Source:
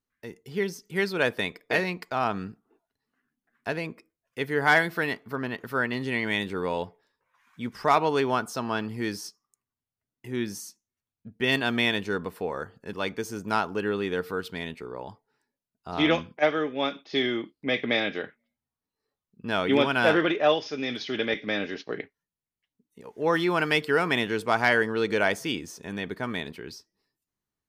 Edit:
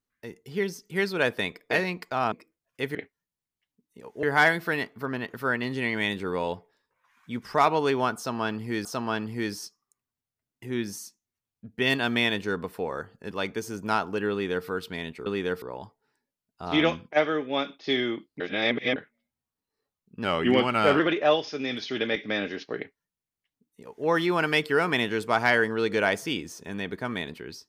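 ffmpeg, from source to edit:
-filter_complex "[0:a]asplit=11[s0][s1][s2][s3][s4][s5][s6][s7][s8][s9][s10];[s0]atrim=end=2.322[s11];[s1]atrim=start=3.898:end=4.532[s12];[s2]atrim=start=21.958:end=23.242[s13];[s3]atrim=start=4.528:end=9.152[s14];[s4]atrim=start=8.468:end=14.882[s15];[s5]atrim=start=13.928:end=14.292[s16];[s6]atrim=start=14.878:end=17.662[s17];[s7]atrim=start=17.658:end=18.222,asetpts=PTS-STARTPTS,areverse[s18];[s8]atrim=start=18.218:end=19.504[s19];[s9]atrim=start=19.5:end=20.18,asetpts=PTS-STARTPTS,asetrate=39690,aresample=44100[s20];[s10]atrim=start=20.176[s21];[s11][s12]acrossfade=d=0.004:c1=hsin:c2=hsin[s22];[s22][s13]acrossfade=d=0.004:c1=hsin:c2=hsin[s23];[s23][s14]acrossfade=d=0.004:c1=hsin:c2=hsin[s24];[s24][s15]acrossfade=d=0.004:c1=hsin:c2=hsin[s25];[s25][s16]acrossfade=d=0.004:c1=hsin:c2=hsin[s26];[s26][s17]acrossfade=d=0.004:c1=hsin:c2=hsin[s27];[s27][s18]acrossfade=d=0.004:c1=hsin:c2=hsin[s28];[s28][s19]acrossfade=d=0.004:c1=hsin:c2=hsin[s29];[s29][s20]acrossfade=d=0.004:c1=hsin:c2=hsin[s30];[s30][s21]acrossfade=d=0.004:c1=hsin:c2=hsin"

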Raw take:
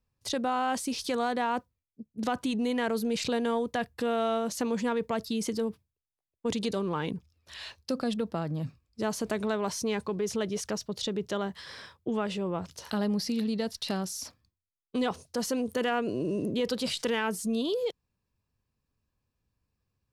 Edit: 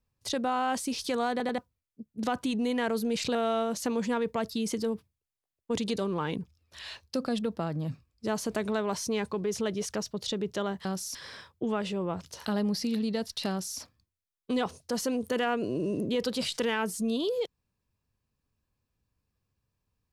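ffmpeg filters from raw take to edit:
-filter_complex "[0:a]asplit=7[s0][s1][s2][s3][s4][s5][s6];[s0]atrim=end=1.402[s7];[s1]atrim=start=1.308:end=1.402[s8];[s2]atrim=start=1.308:end=1.402[s9];[s3]atrim=start=1.578:end=3.352[s10];[s4]atrim=start=4.098:end=11.602[s11];[s5]atrim=start=13.938:end=14.242[s12];[s6]atrim=start=11.598[s13];[s7][s8]acrossfade=d=0.004:c1=hsin:c2=hsin[s14];[s14][s9]acrossfade=d=0.004:c1=hsin:c2=hsin[s15];[s15][s10]acrossfade=d=0.004:c1=hsin:c2=hsin[s16];[s16][s11]acrossfade=d=0.004:c1=hsin:c2=hsin[s17];[s17][s12]acrossfade=d=0.004:c1=hsin:c2=hsin[s18];[s18][s13]acrossfade=d=0.004:c1=hsin:c2=hsin"

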